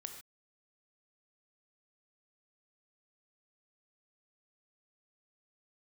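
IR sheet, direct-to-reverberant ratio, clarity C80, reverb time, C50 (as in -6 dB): 5.0 dB, 9.0 dB, not exponential, 7.0 dB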